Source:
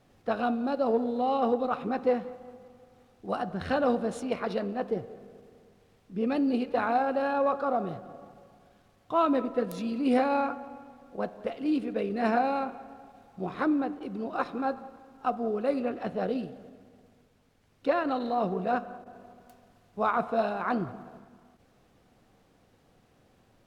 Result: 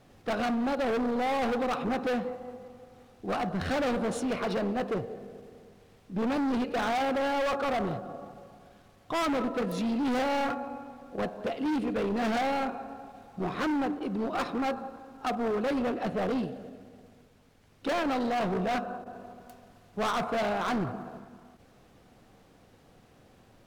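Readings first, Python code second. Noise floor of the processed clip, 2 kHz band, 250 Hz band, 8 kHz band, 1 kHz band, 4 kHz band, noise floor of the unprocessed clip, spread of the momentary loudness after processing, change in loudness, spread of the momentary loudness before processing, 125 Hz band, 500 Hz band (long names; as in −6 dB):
−59 dBFS, +2.5 dB, 0.0 dB, can't be measured, −1.5 dB, +6.5 dB, −64 dBFS, 15 LU, −1.0 dB, 16 LU, +3.5 dB, −1.5 dB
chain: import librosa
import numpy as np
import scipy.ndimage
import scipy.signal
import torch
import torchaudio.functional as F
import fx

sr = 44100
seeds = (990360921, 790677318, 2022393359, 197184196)

y = np.clip(10.0 ** (31.5 / 20.0) * x, -1.0, 1.0) / 10.0 ** (31.5 / 20.0)
y = y * librosa.db_to_amplitude(5.0)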